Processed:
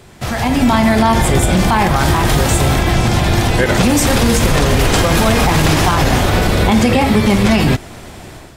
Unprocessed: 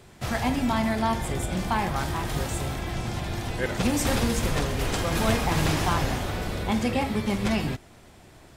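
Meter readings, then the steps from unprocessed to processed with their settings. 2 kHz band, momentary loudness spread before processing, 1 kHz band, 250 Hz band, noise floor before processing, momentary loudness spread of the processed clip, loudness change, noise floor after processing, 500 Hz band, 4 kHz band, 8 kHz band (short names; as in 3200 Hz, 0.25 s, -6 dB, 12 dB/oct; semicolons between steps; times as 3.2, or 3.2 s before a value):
+13.5 dB, 7 LU, +13.0 dB, +13.5 dB, -51 dBFS, 2 LU, +13.5 dB, -35 dBFS, +13.5 dB, +14.0 dB, +14.0 dB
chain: limiter -21.5 dBFS, peak gain reduction 11 dB; AGC gain up to 9 dB; gain +9 dB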